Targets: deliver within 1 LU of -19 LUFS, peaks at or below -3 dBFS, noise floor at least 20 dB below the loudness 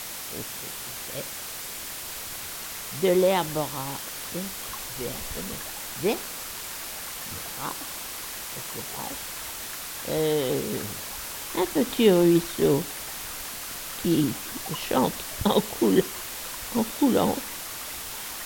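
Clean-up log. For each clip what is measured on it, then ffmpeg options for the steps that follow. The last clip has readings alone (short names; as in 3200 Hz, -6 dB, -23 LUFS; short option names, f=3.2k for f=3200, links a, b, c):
noise floor -37 dBFS; noise floor target -48 dBFS; loudness -27.5 LUFS; peak -6.5 dBFS; loudness target -19.0 LUFS
-> -af "afftdn=nr=11:nf=-37"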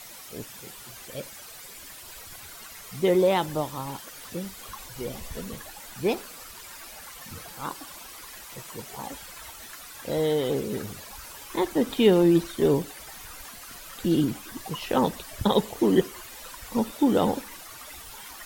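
noise floor -44 dBFS; noise floor target -47 dBFS
-> -af "afftdn=nr=6:nf=-44"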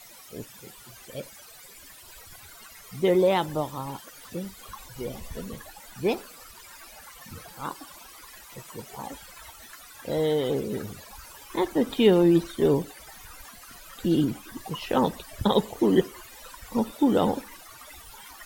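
noise floor -48 dBFS; loudness -26.0 LUFS; peak -7.0 dBFS; loudness target -19.0 LUFS
-> -af "volume=7dB,alimiter=limit=-3dB:level=0:latency=1"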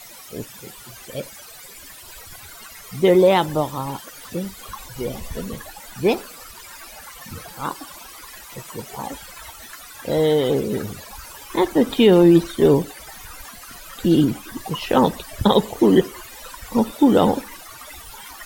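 loudness -19.5 LUFS; peak -3.0 dBFS; noise floor -41 dBFS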